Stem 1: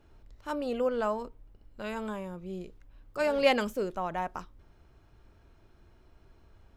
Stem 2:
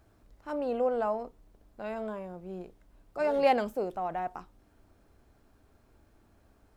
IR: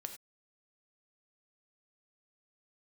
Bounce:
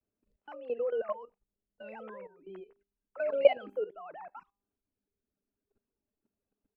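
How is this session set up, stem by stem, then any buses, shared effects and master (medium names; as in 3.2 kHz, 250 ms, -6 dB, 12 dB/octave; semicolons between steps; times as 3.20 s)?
+1.5 dB, 0.00 s, send -23 dB, formants replaced by sine waves; gate with hold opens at -44 dBFS; hum notches 50/100/150/200/250/300/350/400 Hz
-8.5 dB, 12 ms, no send, reverb removal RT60 1.6 s; feedback comb 200 Hz, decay 0.48 s, harmonics all, mix 70%; small resonant body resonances 240/420/2600 Hz, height 12 dB, ringing for 25 ms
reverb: on, pre-delay 3 ms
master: level held to a coarse grid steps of 15 dB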